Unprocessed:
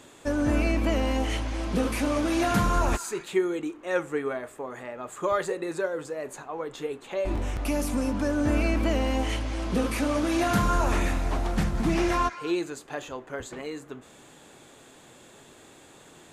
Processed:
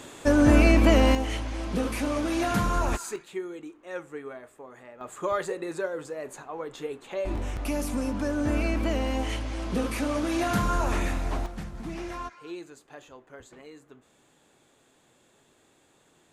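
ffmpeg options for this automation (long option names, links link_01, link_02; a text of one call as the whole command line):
ffmpeg -i in.wav -af "asetnsamples=nb_out_samples=441:pad=0,asendcmd='1.15 volume volume -2dB;3.16 volume volume -9.5dB;5.01 volume volume -2dB;11.46 volume volume -11.5dB',volume=6.5dB" out.wav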